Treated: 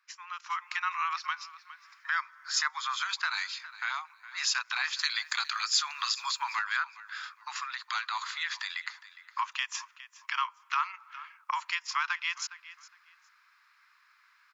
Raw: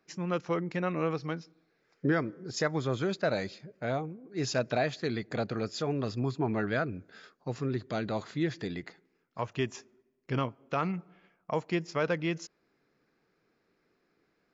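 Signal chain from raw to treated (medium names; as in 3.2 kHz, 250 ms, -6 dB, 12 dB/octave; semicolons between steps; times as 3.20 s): steep high-pass 980 Hz 72 dB/octave; treble shelf 3.1 kHz -4.5 dB, from 4.99 s +8 dB, from 6.59 s -6 dB; compression 2:1, threshold -45 dBFS, peak gain reduction 9 dB; feedback delay 411 ms, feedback 20%, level -19 dB; dynamic bell 1.7 kHz, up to -4 dB, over -55 dBFS, Q 0.96; level rider gain up to 12 dB; trim +4.5 dB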